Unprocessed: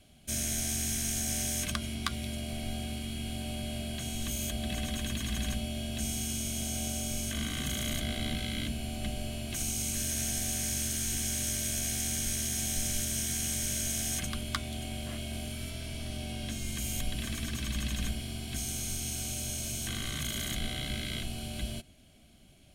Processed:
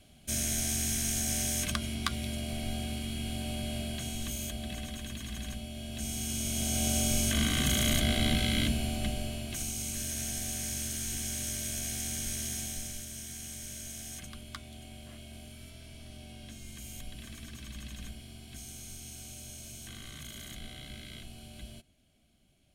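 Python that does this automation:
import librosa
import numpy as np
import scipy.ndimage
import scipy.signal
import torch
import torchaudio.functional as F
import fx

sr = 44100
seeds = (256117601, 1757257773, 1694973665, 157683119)

y = fx.gain(x, sr, db=fx.line((3.81, 1.0), (4.99, -6.0), (5.7, -6.0), (6.97, 6.0), (8.65, 6.0), (9.71, -3.0), (12.52, -3.0), (13.04, -10.0)))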